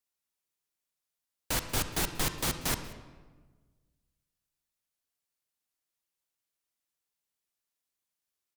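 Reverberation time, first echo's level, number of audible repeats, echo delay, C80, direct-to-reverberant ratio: 1.4 s, -22.5 dB, 1, 186 ms, 11.0 dB, 9.0 dB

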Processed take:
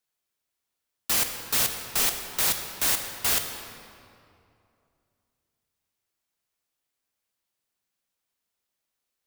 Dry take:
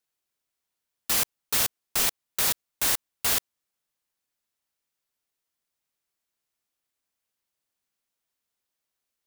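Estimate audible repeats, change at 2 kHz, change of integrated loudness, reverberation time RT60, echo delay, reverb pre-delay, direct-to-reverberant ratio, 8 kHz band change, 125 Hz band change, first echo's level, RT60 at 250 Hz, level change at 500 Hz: no echo, +1.0 dB, +0.5 dB, 2.6 s, no echo, 16 ms, 5.5 dB, +0.5 dB, +1.5 dB, no echo, 2.9 s, +1.0 dB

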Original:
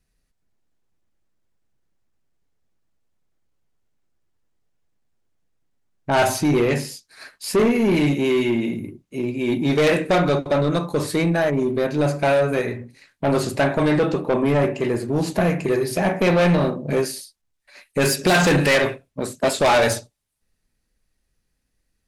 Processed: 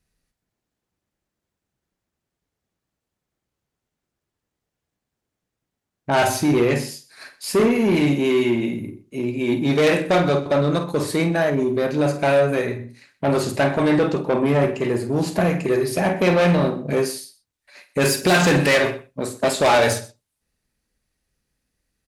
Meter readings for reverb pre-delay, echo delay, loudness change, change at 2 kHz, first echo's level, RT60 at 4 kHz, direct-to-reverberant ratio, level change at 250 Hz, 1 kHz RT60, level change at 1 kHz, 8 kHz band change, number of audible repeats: no reverb, 50 ms, +0.5 dB, +0.5 dB, -11.0 dB, no reverb, no reverb, +0.5 dB, no reverb, +0.5 dB, +0.5 dB, 2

